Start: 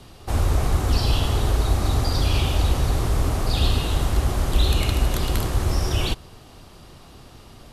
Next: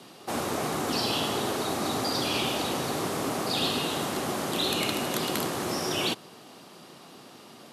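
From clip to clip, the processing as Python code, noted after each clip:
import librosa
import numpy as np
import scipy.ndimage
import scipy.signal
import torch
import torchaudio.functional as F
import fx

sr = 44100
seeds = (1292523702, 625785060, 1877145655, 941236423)

y = scipy.signal.sosfilt(scipy.signal.butter(4, 180.0, 'highpass', fs=sr, output='sos'), x)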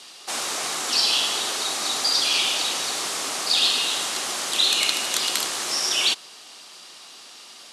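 y = fx.weighting(x, sr, curve='ITU-R 468')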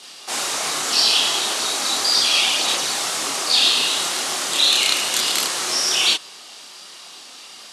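y = fx.chorus_voices(x, sr, voices=2, hz=0.92, base_ms=29, depth_ms=4.2, mix_pct=50)
y = F.gain(torch.from_numpy(y), 7.0).numpy()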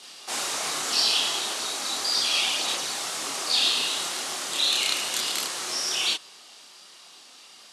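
y = fx.rider(x, sr, range_db=4, speed_s=2.0)
y = F.gain(torch.from_numpy(y), -7.5).numpy()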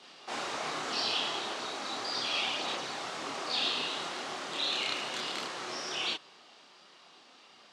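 y = fx.spacing_loss(x, sr, db_at_10k=24)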